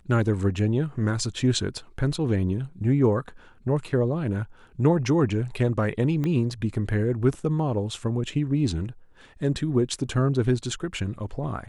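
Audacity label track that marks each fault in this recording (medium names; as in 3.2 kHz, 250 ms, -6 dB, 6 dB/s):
6.240000	6.240000	pop -17 dBFS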